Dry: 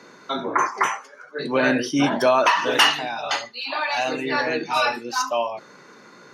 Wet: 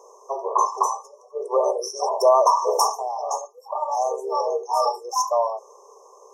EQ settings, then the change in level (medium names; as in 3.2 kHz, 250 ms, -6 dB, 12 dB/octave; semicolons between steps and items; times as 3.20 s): brick-wall FIR high-pass 380 Hz; brick-wall FIR band-stop 1.2–5.2 kHz; +2.5 dB